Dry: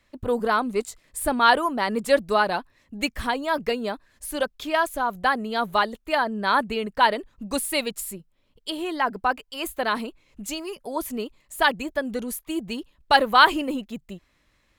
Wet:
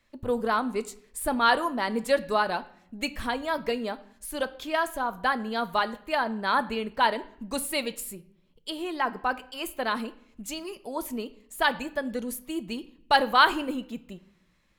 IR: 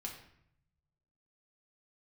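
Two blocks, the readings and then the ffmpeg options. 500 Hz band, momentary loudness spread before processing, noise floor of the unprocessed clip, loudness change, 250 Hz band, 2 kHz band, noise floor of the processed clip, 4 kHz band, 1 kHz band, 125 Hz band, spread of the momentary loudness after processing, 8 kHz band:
-4.0 dB, 16 LU, -66 dBFS, -4.0 dB, -3.0 dB, -4.0 dB, -64 dBFS, -3.5 dB, -4.0 dB, -4.0 dB, 15 LU, -4.0 dB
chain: -filter_complex "[0:a]asplit=2[s0][s1];[1:a]atrim=start_sample=2205,asetrate=48510,aresample=44100[s2];[s1][s2]afir=irnorm=-1:irlink=0,volume=0.562[s3];[s0][s3]amix=inputs=2:normalize=0,volume=0.501"

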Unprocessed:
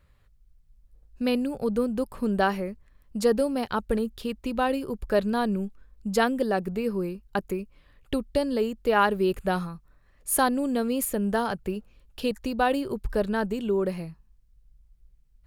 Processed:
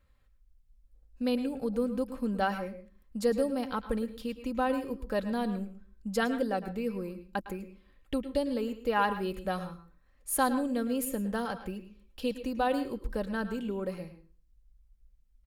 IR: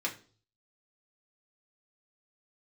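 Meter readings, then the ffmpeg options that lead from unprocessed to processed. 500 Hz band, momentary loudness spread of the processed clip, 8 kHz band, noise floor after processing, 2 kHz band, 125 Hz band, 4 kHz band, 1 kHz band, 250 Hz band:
-6.0 dB, 13 LU, -6.0 dB, -65 dBFS, -5.5 dB, -6.5 dB, -6.0 dB, -5.0 dB, -4.5 dB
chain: -filter_complex "[0:a]aecho=1:1:3.8:0.46,asplit=2[s0][s1];[1:a]atrim=start_sample=2205,adelay=106[s2];[s1][s2]afir=irnorm=-1:irlink=0,volume=0.178[s3];[s0][s3]amix=inputs=2:normalize=0,volume=0.447"

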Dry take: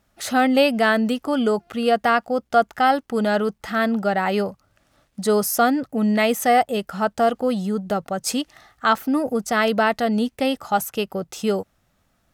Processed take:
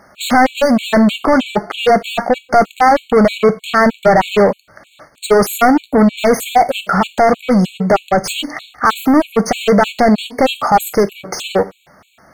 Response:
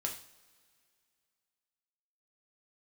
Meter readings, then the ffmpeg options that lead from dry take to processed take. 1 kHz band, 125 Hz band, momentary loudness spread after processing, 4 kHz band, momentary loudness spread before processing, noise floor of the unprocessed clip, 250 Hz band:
+7.5 dB, +10.5 dB, 7 LU, +6.5 dB, 7 LU, -67 dBFS, +7.5 dB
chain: -filter_complex "[0:a]asplit=2[s0][s1];[s1]highpass=f=720:p=1,volume=35.5,asoftclip=type=tanh:threshold=0.562[s2];[s0][s2]amix=inputs=2:normalize=0,lowpass=f=1400:p=1,volume=0.501,asplit=2[s3][s4];[1:a]atrim=start_sample=2205,afade=t=out:st=0.22:d=0.01,atrim=end_sample=10143,highshelf=f=6300:g=10.5[s5];[s4][s5]afir=irnorm=-1:irlink=0,volume=0.398[s6];[s3][s6]amix=inputs=2:normalize=0,afftfilt=real='re*gt(sin(2*PI*3.2*pts/sr)*(1-2*mod(floor(b*sr/1024/2200),2)),0)':imag='im*gt(sin(2*PI*3.2*pts/sr)*(1-2*mod(floor(b*sr/1024/2200),2)),0)':win_size=1024:overlap=0.75,volume=1.12"

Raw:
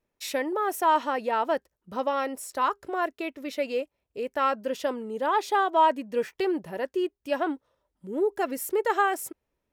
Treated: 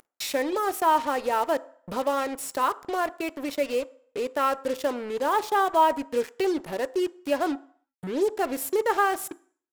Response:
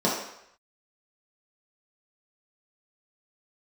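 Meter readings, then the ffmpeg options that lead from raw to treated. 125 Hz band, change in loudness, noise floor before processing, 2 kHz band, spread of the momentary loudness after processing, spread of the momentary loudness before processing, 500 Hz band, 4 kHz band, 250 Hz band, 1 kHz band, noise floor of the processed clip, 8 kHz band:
no reading, +1.0 dB, -82 dBFS, +0.5 dB, 8 LU, 10 LU, +1.5 dB, +2.5 dB, +1.5 dB, +0.5 dB, -82 dBFS, +3.5 dB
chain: -filter_complex "[0:a]acompressor=mode=upward:threshold=0.0447:ratio=2.5,acrusher=bits=5:mix=0:aa=0.5,asplit=2[s0][s1];[1:a]atrim=start_sample=2205,asetrate=57330,aresample=44100[s2];[s1][s2]afir=irnorm=-1:irlink=0,volume=0.0398[s3];[s0][s3]amix=inputs=2:normalize=0"

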